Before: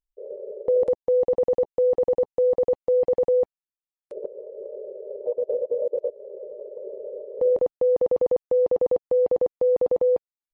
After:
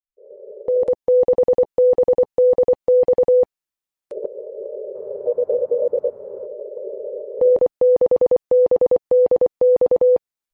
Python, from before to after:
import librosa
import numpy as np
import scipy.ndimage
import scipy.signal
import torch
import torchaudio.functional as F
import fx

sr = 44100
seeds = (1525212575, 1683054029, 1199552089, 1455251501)

y = fx.fade_in_head(x, sr, length_s=1.2)
y = fx.dmg_noise_band(y, sr, seeds[0], low_hz=74.0, high_hz=850.0, level_db=-59.0, at=(4.94, 6.45), fade=0.02)
y = y * 10.0 ** (6.0 / 20.0)